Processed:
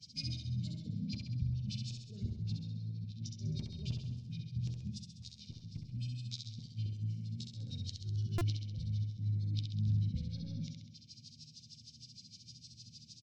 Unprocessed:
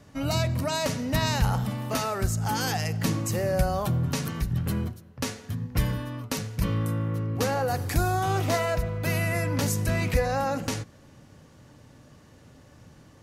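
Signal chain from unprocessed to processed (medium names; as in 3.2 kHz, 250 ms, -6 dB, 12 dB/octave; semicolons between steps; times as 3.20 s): frequency weighting ITU-R 468; low-pass that closes with the level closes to 470 Hz, closed at -20.5 dBFS; elliptic band-stop 210–6500 Hz, stop band 60 dB; bass shelf 170 Hz -4 dB; comb 1.4 ms, depth 34%; in parallel at -3.5 dB: saturation -24.5 dBFS, distortion -21 dB; on the sum: inverted gate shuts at -31 dBFS, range -39 dB; chord resonator D#2 sus4, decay 0.27 s; LFO low-pass sine 6.5 Hz 370–4700 Hz; formant shift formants -3 st; on a send: feedback delay 66 ms, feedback 58%, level -4.5 dB; on the sum: buffer glitch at 8.38 s, samples 128, times 10; trim +17 dB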